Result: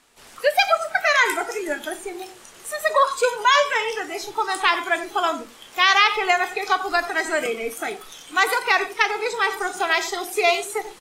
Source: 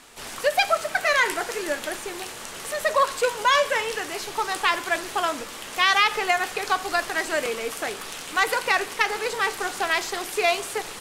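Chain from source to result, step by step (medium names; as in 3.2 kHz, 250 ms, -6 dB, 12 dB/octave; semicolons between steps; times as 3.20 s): echo from a far wall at 16 m, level -12 dB; spectral noise reduction 13 dB; trim +3 dB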